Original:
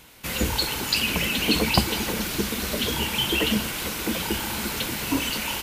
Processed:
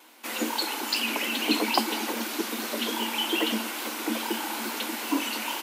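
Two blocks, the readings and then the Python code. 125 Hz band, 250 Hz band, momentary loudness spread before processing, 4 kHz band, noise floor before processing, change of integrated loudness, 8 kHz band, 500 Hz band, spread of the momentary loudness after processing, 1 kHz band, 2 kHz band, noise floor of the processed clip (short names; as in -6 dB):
under -20 dB, -2.5 dB, 6 LU, -4.0 dB, -32 dBFS, -3.5 dB, -4.5 dB, -3.0 dB, 6 LU, +1.0 dB, -3.5 dB, -35 dBFS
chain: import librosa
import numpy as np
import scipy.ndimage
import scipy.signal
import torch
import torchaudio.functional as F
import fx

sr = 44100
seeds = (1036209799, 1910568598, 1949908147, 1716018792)

y = fx.vibrato(x, sr, rate_hz=2.4, depth_cents=42.0)
y = scipy.signal.sosfilt(scipy.signal.cheby1(6, 6, 220.0, 'highpass', fs=sr, output='sos'), y)
y = F.gain(torch.from_numpy(y), 1.5).numpy()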